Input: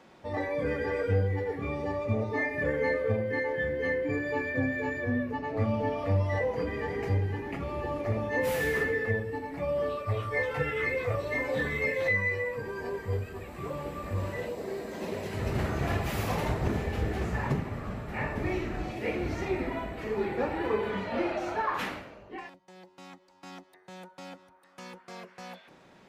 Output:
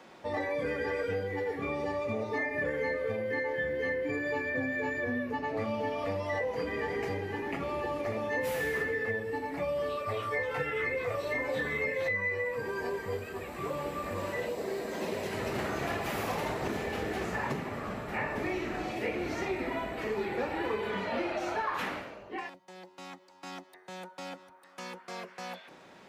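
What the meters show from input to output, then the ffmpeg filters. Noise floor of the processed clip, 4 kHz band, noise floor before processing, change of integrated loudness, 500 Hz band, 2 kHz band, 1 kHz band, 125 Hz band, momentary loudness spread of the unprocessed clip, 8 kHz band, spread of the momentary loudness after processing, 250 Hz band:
−55 dBFS, +1.0 dB, −57 dBFS, −2.5 dB, −1.5 dB, −1.0 dB, 0.0 dB, −10.5 dB, 17 LU, +0.5 dB, 12 LU, −3.0 dB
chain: -filter_complex "[0:a]lowshelf=frequency=170:gain=-10,acrossover=split=160|2200[link_01][link_02][link_03];[link_01]acompressor=threshold=-50dB:ratio=4[link_04];[link_02]acompressor=threshold=-35dB:ratio=4[link_05];[link_03]acompressor=threshold=-47dB:ratio=4[link_06];[link_04][link_05][link_06]amix=inputs=3:normalize=0,volume=4dB"

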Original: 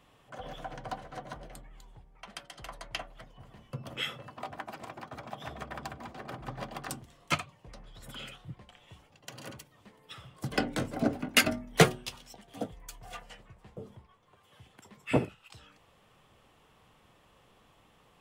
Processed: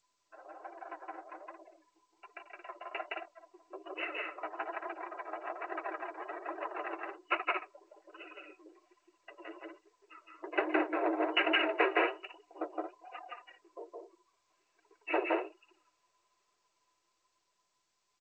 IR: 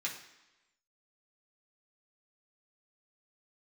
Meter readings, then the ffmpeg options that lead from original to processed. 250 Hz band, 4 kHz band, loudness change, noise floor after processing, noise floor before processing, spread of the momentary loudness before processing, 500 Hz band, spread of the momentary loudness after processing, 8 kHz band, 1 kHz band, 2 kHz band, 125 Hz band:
−4.0 dB, −5.5 dB, −1.5 dB, −79 dBFS, −64 dBFS, 25 LU, 0.0 dB, 22 LU, below −30 dB, +1.5 dB, −0.5 dB, below −40 dB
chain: -af "aeval=exprs='max(val(0),0)':channel_layout=same,aeval=exprs='val(0)+0.000398*sin(2*PI*990*n/s)':channel_layout=same,afftdn=noise_reduction=21:noise_floor=-49,aecho=1:1:166.2|224.5:0.891|0.355,asoftclip=type=tanh:threshold=-19dB,aecho=1:1:3.1:0.43,afftfilt=real='re*between(b*sr/4096,290,2900)':imag='im*between(b*sr/4096,290,2900)':win_size=4096:overlap=0.75,afreqshift=22,flanger=delay=2.4:depth=7.4:regen=1:speed=1.2:shape=triangular,dynaudnorm=framelen=640:gausssize=7:maxgain=8dB" -ar 16000 -c:a g722

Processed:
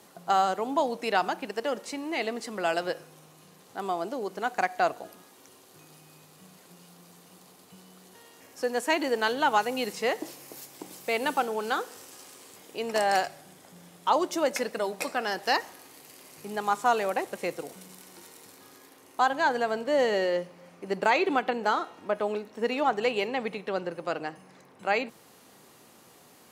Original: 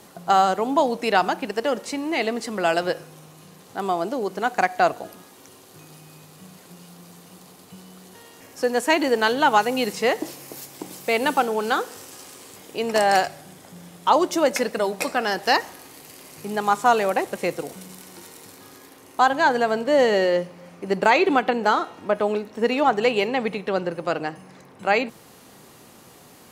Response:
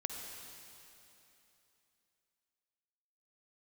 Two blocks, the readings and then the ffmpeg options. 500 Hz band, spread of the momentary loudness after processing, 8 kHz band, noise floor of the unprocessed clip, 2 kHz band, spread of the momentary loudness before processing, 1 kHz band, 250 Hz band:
−6.5 dB, 18 LU, −6.0 dB, −49 dBFS, −6.0 dB, 18 LU, −6.0 dB, −8.0 dB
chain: -af "lowshelf=frequency=140:gain=-8.5,volume=-6dB"

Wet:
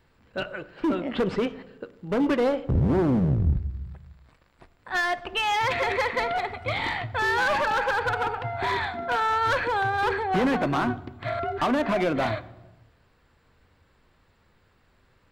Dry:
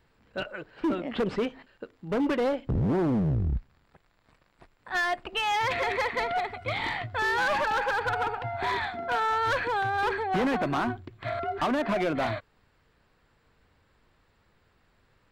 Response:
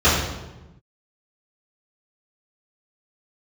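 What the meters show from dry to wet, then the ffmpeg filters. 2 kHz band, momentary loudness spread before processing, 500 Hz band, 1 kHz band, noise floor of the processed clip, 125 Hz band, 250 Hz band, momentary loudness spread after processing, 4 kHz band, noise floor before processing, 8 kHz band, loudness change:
+2.5 dB, 9 LU, +3.0 dB, +2.5 dB, −64 dBFS, +4.0 dB, +3.0 dB, 11 LU, +2.5 dB, −67 dBFS, +2.5 dB, +2.5 dB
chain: -filter_complex "[0:a]asplit=2[link_01][link_02];[1:a]atrim=start_sample=2205[link_03];[link_02][link_03]afir=irnorm=-1:irlink=0,volume=-37.5dB[link_04];[link_01][link_04]amix=inputs=2:normalize=0,volume=2.5dB"

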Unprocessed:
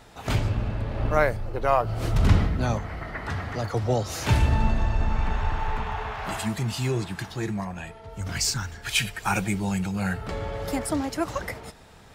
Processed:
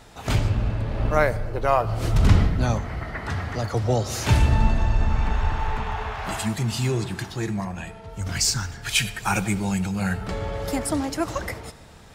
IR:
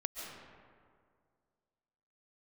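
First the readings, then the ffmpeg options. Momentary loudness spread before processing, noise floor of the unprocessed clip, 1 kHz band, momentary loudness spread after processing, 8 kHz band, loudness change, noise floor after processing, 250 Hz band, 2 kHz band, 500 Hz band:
10 LU, −47 dBFS, +1.5 dB, 10 LU, +4.0 dB, +2.5 dB, −44 dBFS, +2.0 dB, +1.5 dB, +1.5 dB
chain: -filter_complex "[0:a]equalizer=frequency=7300:width_type=o:width=1.7:gain=3,asplit=2[link_01][link_02];[1:a]atrim=start_sample=2205,asetrate=83790,aresample=44100,lowshelf=frequency=320:gain=10.5[link_03];[link_02][link_03]afir=irnorm=-1:irlink=0,volume=-10dB[link_04];[link_01][link_04]amix=inputs=2:normalize=0"

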